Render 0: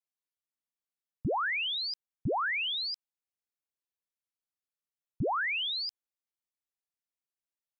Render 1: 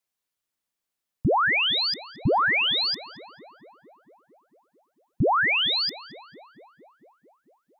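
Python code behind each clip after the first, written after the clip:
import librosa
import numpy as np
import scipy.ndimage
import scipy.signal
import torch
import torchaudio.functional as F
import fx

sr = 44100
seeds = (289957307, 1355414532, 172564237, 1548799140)

y = fx.echo_tape(x, sr, ms=224, feedback_pct=81, wet_db=-13.5, lp_hz=1600.0, drive_db=20.0, wow_cents=21)
y = F.gain(torch.from_numpy(y), 9.0).numpy()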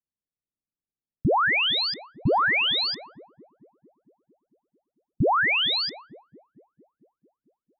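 y = fx.env_lowpass(x, sr, base_hz=310.0, full_db=-19.5)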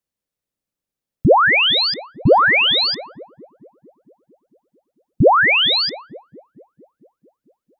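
y = fx.peak_eq(x, sr, hz=530.0, db=7.0, octaves=0.37)
y = F.gain(torch.from_numpy(y), 8.0).numpy()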